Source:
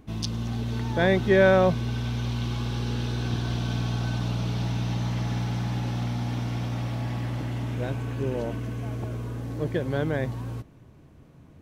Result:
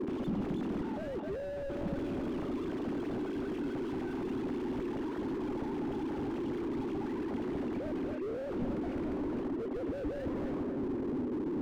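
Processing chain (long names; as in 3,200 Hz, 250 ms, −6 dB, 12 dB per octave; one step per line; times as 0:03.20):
three sine waves on the formant tracks
noise in a band 240–400 Hz −37 dBFS
reversed playback
downward compressor 12 to 1, threshold −34 dBFS, peak gain reduction 24.5 dB
reversed playback
feedback echo with a low-pass in the loop 259 ms, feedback 61%, low-pass 940 Hz, level −7 dB
slew-rate limiting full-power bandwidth 3.3 Hz
level +7 dB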